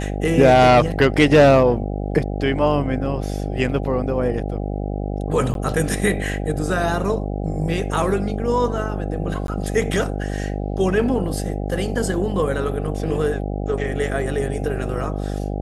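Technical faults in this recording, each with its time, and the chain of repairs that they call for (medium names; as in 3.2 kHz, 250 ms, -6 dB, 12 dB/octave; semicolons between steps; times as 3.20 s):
buzz 50 Hz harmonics 16 -25 dBFS
5.54–5.55 s: dropout 12 ms
9.47–9.48 s: dropout 12 ms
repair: de-hum 50 Hz, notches 16; interpolate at 5.54 s, 12 ms; interpolate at 9.47 s, 12 ms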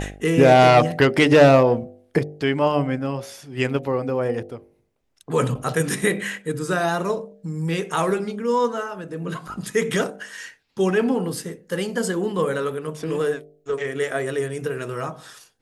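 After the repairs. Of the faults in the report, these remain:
nothing left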